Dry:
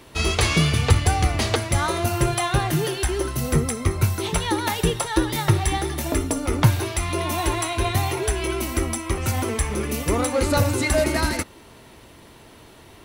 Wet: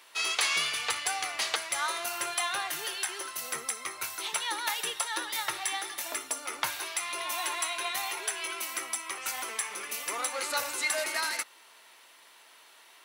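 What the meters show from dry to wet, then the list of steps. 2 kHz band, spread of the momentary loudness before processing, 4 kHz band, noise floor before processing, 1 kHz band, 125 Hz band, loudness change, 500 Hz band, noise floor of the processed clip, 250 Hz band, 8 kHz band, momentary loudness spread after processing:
−4.0 dB, 6 LU, −3.5 dB, −47 dBFS, −8.0 dB, below −40 dB, −8.5 dB, −16.5 dB, −56 dBFS, −26.5 dB, −3.5 dB, 6 LU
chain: high-pass filter 1,100 Hz 12 dB per octave
level −3.5 dB

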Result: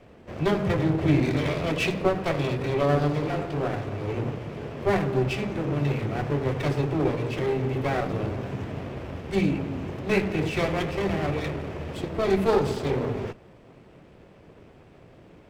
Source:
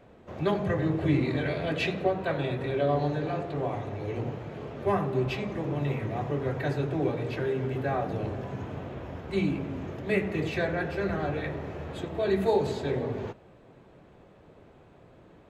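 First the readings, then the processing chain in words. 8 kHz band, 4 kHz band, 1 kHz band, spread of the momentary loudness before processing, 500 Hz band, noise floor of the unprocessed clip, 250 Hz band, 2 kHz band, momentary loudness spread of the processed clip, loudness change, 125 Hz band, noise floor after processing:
can't be measured, +4.5 dB, +2.5 dB, 10 LU, +2.5 dB, −55 dBFS, +4.0 dB, +3.0 dB, 10 LU, +3.5 dB, +4.0 dB, −51 dBFS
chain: lower of the sound and its delayed copy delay 0.37 ms
level +4 dB

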